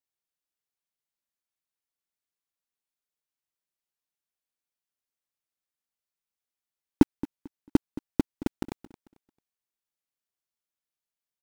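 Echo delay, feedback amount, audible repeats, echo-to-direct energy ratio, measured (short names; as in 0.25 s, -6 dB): 0.222 s, 27%, 2, -15.5 dB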